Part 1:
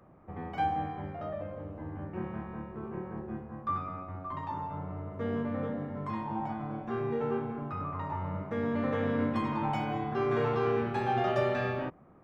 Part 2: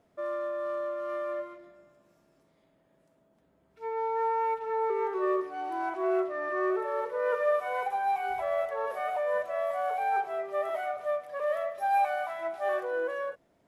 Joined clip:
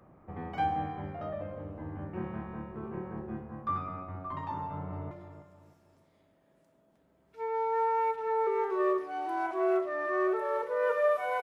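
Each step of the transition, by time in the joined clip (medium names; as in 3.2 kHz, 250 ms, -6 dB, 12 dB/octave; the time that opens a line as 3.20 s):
part 1
4.61–5.11 s: echo throw 310 ms, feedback 35%, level -11.5 dB
5.11 s: go over to part 2 from 1.54 s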